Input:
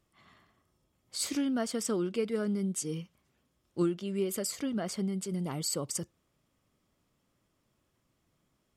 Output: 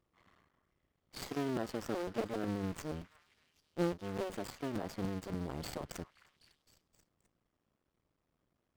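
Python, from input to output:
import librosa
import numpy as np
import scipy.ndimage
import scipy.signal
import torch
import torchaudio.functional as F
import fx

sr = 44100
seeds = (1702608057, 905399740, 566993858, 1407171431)

p1 = fx.cycle_switch(x, sr, every=2, mode='muted')
p2 = fx.sample_hold(p1, sr, seeds[0], rate_hz=4300.0, jitter_pct=0)
p3 = p1 + (p2 * librosa.db_to_amplitude(-8.0))
p4 = fx.high_shelf(p3, sr, hz=7500.0, db=-8.5)
p5 = fx.echo_stepped(p4, sr, ms=259, hz=1500.0, octaves=0.7, feedback_pct=70, wet_db=-12)
p6 = fx.buffer_crackle(p5, sr, first_s=0.69, period_s=0.29, block=256, kind='repeat')
p7 = fx.running_max(p6, sr, window=3)
y = p7 * librosa.db_to_amplitude(-5.5)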